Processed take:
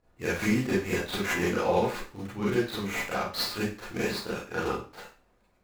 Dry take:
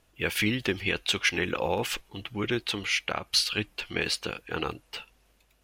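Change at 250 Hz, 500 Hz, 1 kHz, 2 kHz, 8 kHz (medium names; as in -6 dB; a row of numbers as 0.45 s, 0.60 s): +3.5 dB, +3.5 dB, +3.0 dB, -3.0 dB, -4.5 dB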